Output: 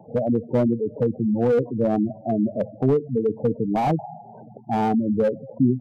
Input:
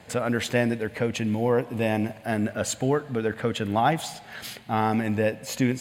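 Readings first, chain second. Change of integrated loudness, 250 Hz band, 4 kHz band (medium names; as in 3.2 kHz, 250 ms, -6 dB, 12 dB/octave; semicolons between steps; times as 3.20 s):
+3.0 dB, +4.5 dB, under -10 dB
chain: elliptic band-pass 120–980 Hz, stop band 50 dB; spectral gate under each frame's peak -10 dB strong; slew-rate limiter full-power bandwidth 38 Hz; trim +6 dB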